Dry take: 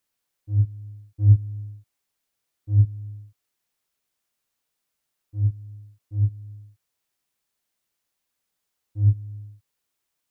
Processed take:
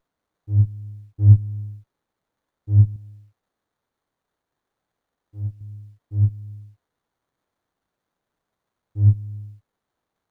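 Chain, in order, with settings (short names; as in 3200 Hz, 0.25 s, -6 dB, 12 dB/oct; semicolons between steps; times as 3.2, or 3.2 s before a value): 2.96–5.61 low shelf 430 Hz -10 dB; running maximum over 17 samples; gain +3.5 dB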